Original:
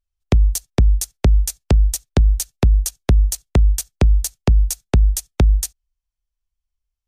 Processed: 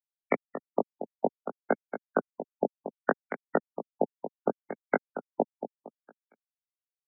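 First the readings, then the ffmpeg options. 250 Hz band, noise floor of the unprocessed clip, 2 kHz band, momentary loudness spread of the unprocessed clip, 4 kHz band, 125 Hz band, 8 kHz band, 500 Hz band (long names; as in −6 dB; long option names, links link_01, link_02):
−9.5 dB, −82 dBFS, −0.5 dB, 2 LU, below −40 dB, −33.0 dB, below −40 dB, −0.5 dB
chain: -filter_complex "[0:a]aeval=exprs='val(0)+0.5*0.0299*sgn(val(0))':channel_layout=same,highpass=frequency=300:width=0.5412,highpass=frequency=300:width=1.3066,equalizer=frequency=350:width_type=q:width=4:gain=-9,equalizer=frequency=1500:width_type=q:width=4:gain=9,equalizer=frequency=2200:width_type=q:width=4:gain=7,lowpass=frequency=3800:width=0.5412,lowpass=frequency=3800:width=1.3066,asplit=2[link_01][link_02];[link_02]acrusher=samples=15:mix=1:aa=0.000001:lfo=1:lforange=15:lforate=1.2,volume=-10.5dB[link_03];[link_01][link_03]amix=inputs=2:normalize=0,afftfilt=real='re*gte(hypot(re,im),0.158)':imag='im*gte(hypot(re,im),0.158)':win_size=1024:overlap=0.75,flanger=delay=18:depth=2.3:speed=0.53,asplit=2[link_04][link_05];[link_05]aecho=0:1:230|460|690|920:0.316|0.101|0.0324|0.0104[link_06];[link_04][link_06]amix=inputs=2:normalize=0,afftfilt=real='re*lt(b*sr/1024,860*pow(2300/860,0.5+0.5*sin(2*PI*0.67*pts/sr)))':imag='im*lt(b*sr/1024,860*pow(2300/860,0.5+0.5*sin(2*PI*0.67*pts/sr)))':win_size=1024:overlap=0.75,volume=2dB"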